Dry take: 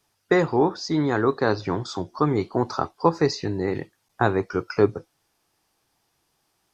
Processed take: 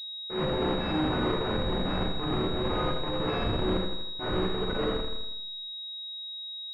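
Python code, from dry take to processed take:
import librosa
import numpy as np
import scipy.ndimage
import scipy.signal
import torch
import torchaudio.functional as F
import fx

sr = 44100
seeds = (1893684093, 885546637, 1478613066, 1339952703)

p1 = fx.freq_snap(x, sr, grid_st=3)
p2 = fx.highpass(p1, sr, hz=110.0, slope=6)
p3 = fx.schmitt(p2, sr, flips_db=-22.5)
p4 = fx.rev_schroeder(p3, sr, rt60_s=0.52, comb_ms=29, drr_db=1.0)
p5 = fx.transient(p4, sr, attack_db=-11, sustain_db=7)
p6 = p5 + fx.echo_feedback(p5, sr, ms=81, feedback_pct=53, wet_db=-7, dry=0)
p7 = fx.pwm(p6, sr, carrier_hz=3800.0)
y = p7 * librosa.db_to_amplitude(-4.5)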